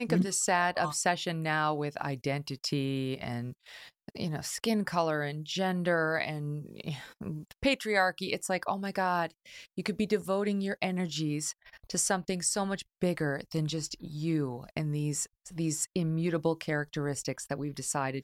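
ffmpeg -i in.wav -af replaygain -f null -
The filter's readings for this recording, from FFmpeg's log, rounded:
track_gain = +12.3 dB
track_peak = 0.148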